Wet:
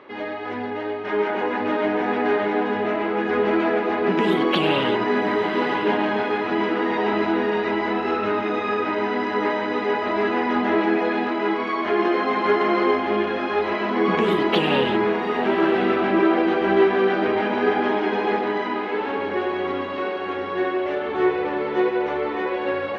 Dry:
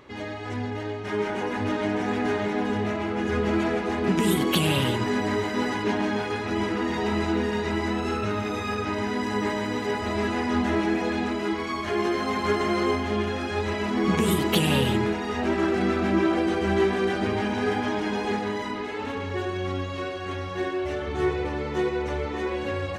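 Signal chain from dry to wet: high-pass 330 Hz 12 dB/octave; distance through air 320 m; echo that smears into a reverb 1119 ms, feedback 44%, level -11 dB; trim +7.5 dB

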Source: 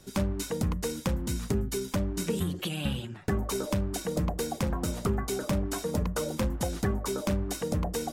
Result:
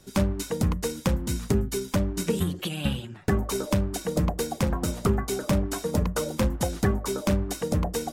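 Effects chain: upward expansion 1.5:1, over -36 dBFS; trim +5.5 dB

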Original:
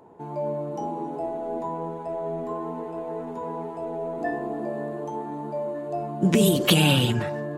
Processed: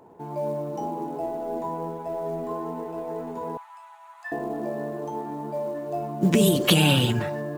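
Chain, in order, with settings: 3.57–4.32 s: steep high-pass 980 Hz 48 dB/octave; short-mantissa float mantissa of 4-bit

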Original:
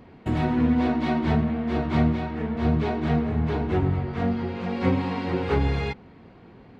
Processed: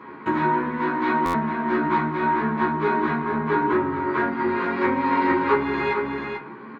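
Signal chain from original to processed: treble shelf 3 kHz -8.5 dB; delay 442 ms -11 dB; compression, threshold -27 dBFS, peak gain reduction 10 dB; high-pass 210 Hz 12 dB/octave; high-order bell 1.4 kHz +8.5 dB 1.3 oct; doubling 14 ms -3.5 dB; reverberation RT60 0.40 s, pre-delay 3 ms, DRR 2.5 dB; buffer glitch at 1.25 s, samples 512, times 7; trim -1 dB

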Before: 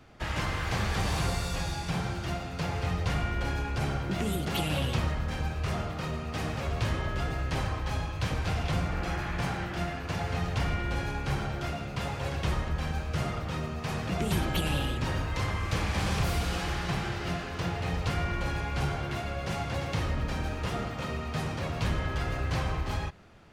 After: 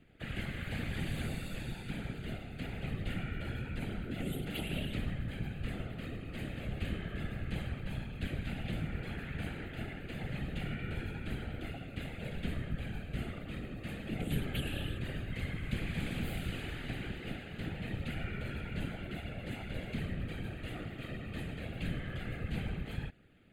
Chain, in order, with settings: static phaser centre 2.4 kHz, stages 4; whisper effect; trim -6.5 dB

